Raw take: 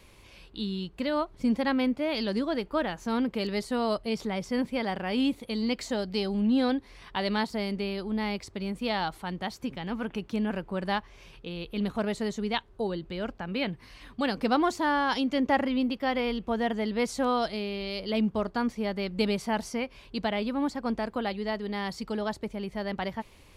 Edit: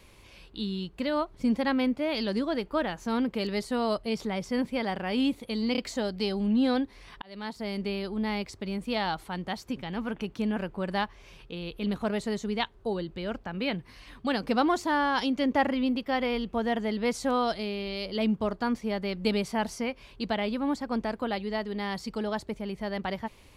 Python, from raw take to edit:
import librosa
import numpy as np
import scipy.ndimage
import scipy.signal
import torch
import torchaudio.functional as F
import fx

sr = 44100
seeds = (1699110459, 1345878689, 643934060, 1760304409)

y = fx.edit(x, sr, fx.stutter(start_s=5.72, slice_s=0.03, count=3),
    fx.fade_in_span(start_s=7.16, length_s=0.63), tone=tone)